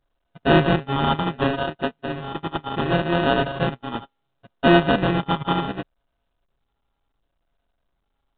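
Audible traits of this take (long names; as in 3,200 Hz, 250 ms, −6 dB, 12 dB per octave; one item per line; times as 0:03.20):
a buzz of ramps at a fixed pitch in blocks of 64 samples
phaser sweep stages 6, 0.69 Hz, lowest notch 590–1,800 Hz
aliases and images of a low sample rate 2,200 Hz, jitter 0%
mu-law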